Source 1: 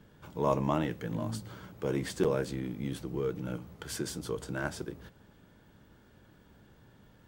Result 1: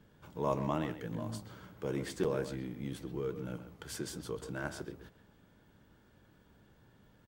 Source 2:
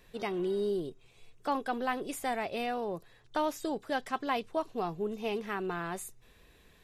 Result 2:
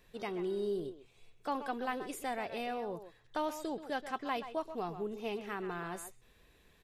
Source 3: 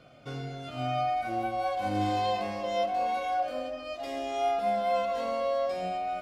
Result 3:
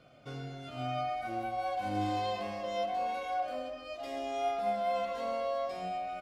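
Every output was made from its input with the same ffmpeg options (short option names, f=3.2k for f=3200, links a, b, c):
-filter_complex "[0:a]asplit=2[a][b];[b]adelay=130,highpass=300,lowpass=3.4k,asoftclip=type=hard:threshold=-23dB,volume=-10dB[c];[a][c]amix=inputs=2:normalize=0,volume=-4.5dB"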